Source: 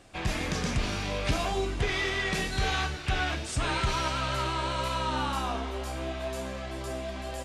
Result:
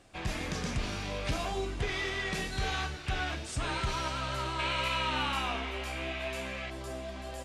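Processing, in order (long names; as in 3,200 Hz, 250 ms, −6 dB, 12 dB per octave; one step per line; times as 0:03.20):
0:04.59–0:06.70: parametric band 2,400 Hz +13 dB 0.99 octaves
hard clipping −17.5 dBFS, distortion −33 dB
level −4.5 dB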